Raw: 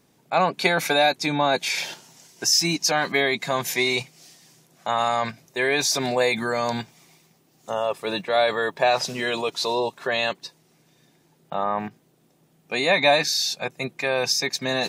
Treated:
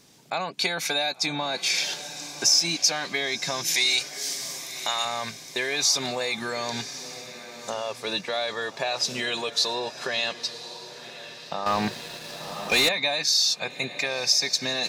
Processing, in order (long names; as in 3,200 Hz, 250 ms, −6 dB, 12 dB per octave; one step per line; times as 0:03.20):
0:03.74–0:05.05: spectral tilt +3.5 dB per octave
downward compressor 3 to 1, threshold −34 dBFS, peak gain reduction 15.5 dB
parametric band 5,200 Hz +10.5 dB 2 octaves
feedback delay with all-pass diffusion 1,059 ms, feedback 41%, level −13 dB
0:11.66–0:12.89: leveller curve on the samples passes 3
level +2.5 dB